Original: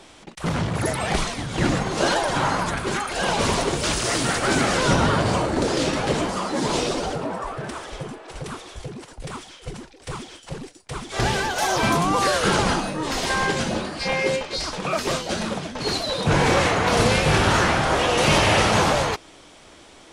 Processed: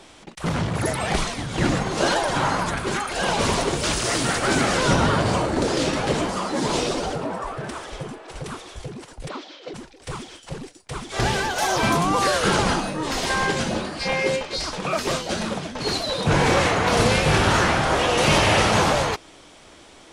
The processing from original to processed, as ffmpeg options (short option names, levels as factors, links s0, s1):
-filter_complex "[0:a]asplit=3[s0][s1][s2];[s0]afade=t=out:st=9.28:d=0.02[s3];[s1]highpass=f=240:w=0.5412,highpass=f=240:w=1.3066,equalizer=f=300:t=q:w=4:g=9,equalizer=f=580:t=q:w=4:g=9,equalizer=f=4100:t=q:w=4:g=5,lowpass=f=5300:w=0.5412,lowpass=f=5300:w=1.3066,afade=t=in:st=9.28:d=0.02,afade=t=out:st=9.73:d=0.02[s4];[s2]afade=t=in:st=9.73:d=0.02[s5];[s3][s4][s5]amix=inputs=3:normalize=0"